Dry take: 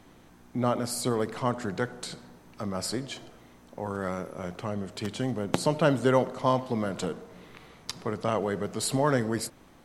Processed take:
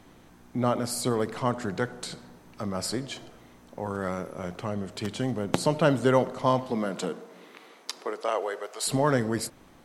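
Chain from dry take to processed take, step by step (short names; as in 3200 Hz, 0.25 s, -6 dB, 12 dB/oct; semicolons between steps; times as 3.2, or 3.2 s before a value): 6.7–8.86 HPF 140 Hz -> 550 Hz 24 dB/oct; gain +1 dB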